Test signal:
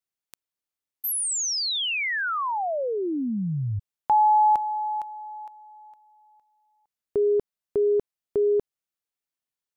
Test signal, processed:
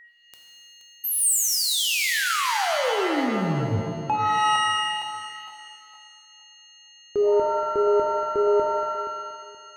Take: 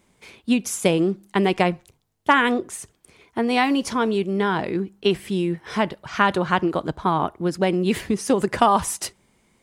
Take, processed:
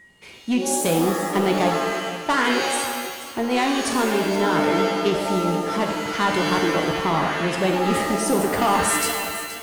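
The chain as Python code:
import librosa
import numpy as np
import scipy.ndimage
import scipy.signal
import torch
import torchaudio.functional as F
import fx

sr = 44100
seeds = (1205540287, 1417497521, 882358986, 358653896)

p1 = x + 10.0 ** (-48.0 / 20.0) * np.sin(2.0 * np.pi * 1900.0 * np.arange(len(x)) / sr)
p2 = 10.0 ** (-16.0 / 20.0) * np.tanh(p1 / 10.0 ** (-16.0 / 20.0))
p3 = p2 + fx.echo_feedback(p2, sr, ms=475, feedback_pct=25, wet_db=-13.0, dry=0)
p4 = fx.dynamic_eq(p3, sr, hz=8600.0, q=3.5, threshold_db=-49.0, ratio=4.0, max_db=7)
y = fx.rev_shimmer(p4, sr, seeds[0], rt60_s=1.2, semitones=7, shimmer_db=-2, drr_db=3.5)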